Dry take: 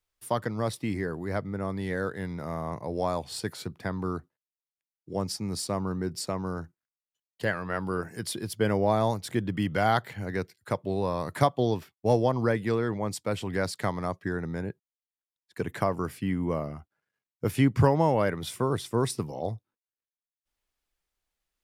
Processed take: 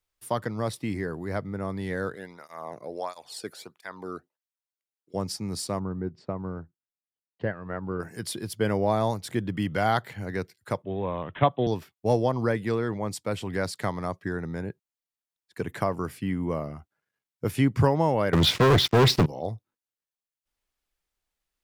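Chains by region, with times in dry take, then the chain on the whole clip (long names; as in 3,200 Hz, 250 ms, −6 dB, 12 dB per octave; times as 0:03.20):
0:02.15–0:05.14: low-shelf EQ 230 Hz −8 dB + through-zero flanger with one copy inverted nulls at 1.5 Hz, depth 1.2 ms
0:05.79–0:08.00: transient designer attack +3 dB, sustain −6 dB + head-to-tape spacing loss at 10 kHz 44 dB
0:10.82–0:11.67: bad sample-rate conversion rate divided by 6×, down none, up filtered + multiband upward and downward expander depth 40%
0:18.33–0:19.26: inverse Chebyshev low-pass filter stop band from 12,000 Hz, stop band 60 dB + high-shelf EQ 2,700 Hz +3 dB + leveller curve on the samples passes 5
whole clip: no processing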